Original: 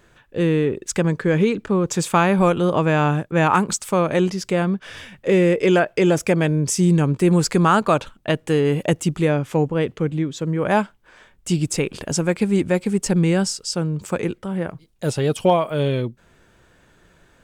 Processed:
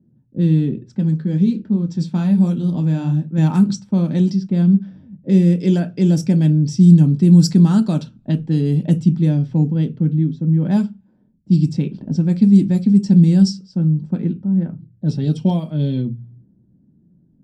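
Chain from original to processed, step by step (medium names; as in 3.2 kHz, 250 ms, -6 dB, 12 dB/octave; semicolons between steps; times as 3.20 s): level-controlled noise filter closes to 380 Hz, open at -13 dBFS; ten-band graphic EQ 125 Hz +5 dB, 250 Hz +6 dB, 500 Hz -8 dB, 1 kHz -11 dB, 2 kHz -6 dB, 8 kHz -5 dB; 0.93–3.38 s: flange 1.2 Hz, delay 8.2 ms, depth 8.8 ms, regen -52%; treble shelf 2.4 kHz +12 dB; reverberation RT60 0.20 s, pre-delay 3 ms, DRR 6 dB; trim -14 dB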